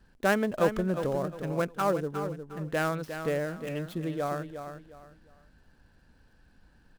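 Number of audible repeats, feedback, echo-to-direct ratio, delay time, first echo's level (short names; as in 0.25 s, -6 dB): 3, 28%, -8.5 dB, 0.357 s, -9.0 dB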